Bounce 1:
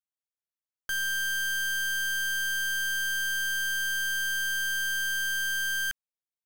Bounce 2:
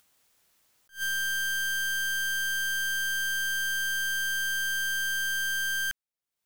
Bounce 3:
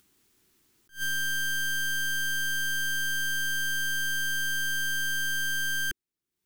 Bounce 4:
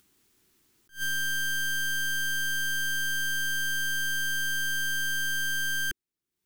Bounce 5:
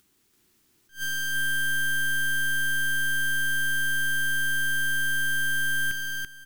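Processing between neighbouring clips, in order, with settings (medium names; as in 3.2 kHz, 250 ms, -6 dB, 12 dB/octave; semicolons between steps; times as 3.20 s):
upward compressor, threshold -45 dBFS; attacks held to a fixed rise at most 260 dB/s
resonant low shelf 450 Hz +7.5 dB, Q 3
no audible change
feedback delay 336 ms, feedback 20%, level -3.5 dB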